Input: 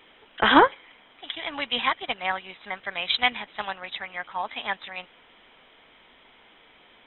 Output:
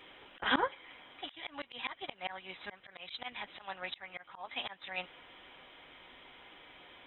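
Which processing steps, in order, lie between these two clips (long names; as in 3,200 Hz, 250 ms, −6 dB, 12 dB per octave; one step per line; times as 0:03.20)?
notch comb filter 220 Hz
volume swells 378 ms
level +1 dB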